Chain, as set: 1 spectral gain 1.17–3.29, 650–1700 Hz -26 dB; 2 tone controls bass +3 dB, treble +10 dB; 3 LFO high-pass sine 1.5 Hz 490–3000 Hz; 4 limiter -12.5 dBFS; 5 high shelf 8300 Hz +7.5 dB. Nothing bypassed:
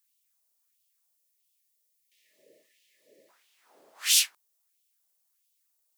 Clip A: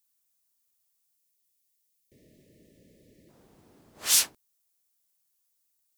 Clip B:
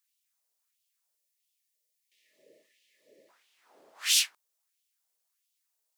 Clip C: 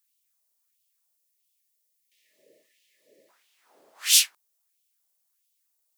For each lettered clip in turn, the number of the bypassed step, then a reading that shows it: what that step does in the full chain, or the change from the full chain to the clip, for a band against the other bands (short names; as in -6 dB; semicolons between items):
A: 3, 1 kHz band +9.5 dB; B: 5, 8 kHz band -3.0 dB; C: 4, crest factor change +2.0 dB